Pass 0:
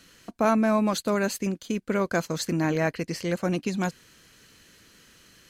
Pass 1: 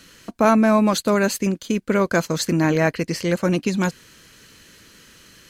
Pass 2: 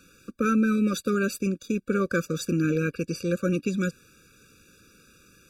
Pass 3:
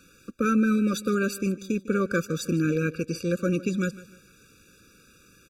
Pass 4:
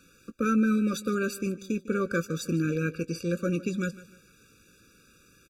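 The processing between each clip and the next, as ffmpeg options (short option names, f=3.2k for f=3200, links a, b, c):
-af "bandreject=f=730:w=12,volume=6.5dB"
-af "afftfilt=real='re*eq(mod(floor(b*sr/1024/560),2),0)':imag='im*eq(mod(floor(b*sr/1024/560),2),0)':win_size=1024:overlap=0.75,volume=-5dB"
-af "aecho=1:1:151|302|453:0.126|0.0441|0.0154"
-filter_complex "[0:a]asplit=2[a][b];[b]adelay=18,volume=-13.5dB[c];[a][c]amix=inputs=2:normalize=0,volume=-3dB"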